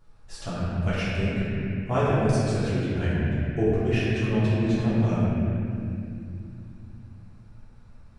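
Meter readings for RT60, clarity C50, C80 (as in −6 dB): 2.7 s, −4.5 dB, −3.0 dB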